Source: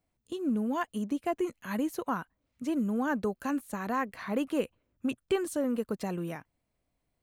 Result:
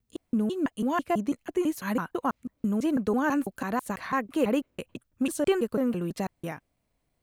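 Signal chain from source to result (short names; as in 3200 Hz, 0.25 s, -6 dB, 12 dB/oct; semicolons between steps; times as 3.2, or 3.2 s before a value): slices in reverse order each 0.165 s, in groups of 2; gain +4 dB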